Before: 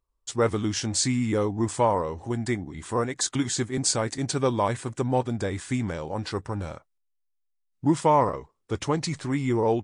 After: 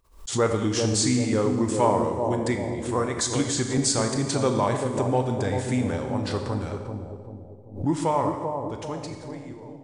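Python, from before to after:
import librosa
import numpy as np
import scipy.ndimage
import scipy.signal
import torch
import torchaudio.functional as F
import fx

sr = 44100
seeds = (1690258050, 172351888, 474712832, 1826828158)

p1 = fx.fade_out_tail(x, sr, length_s=2.76)
p2 = p1 + fx.echo_bbd(p1, sr, ms=389, stages=2048, feedback_pct=47, wet_db=-5.0, dry=0)
p3 = fx.rev_schroeder(p2, sr, rt60_s=1.3, comb_ms=28, drr_db=5.5)
y = fx.pre_swell(p3, sr, db_per_s=130.0)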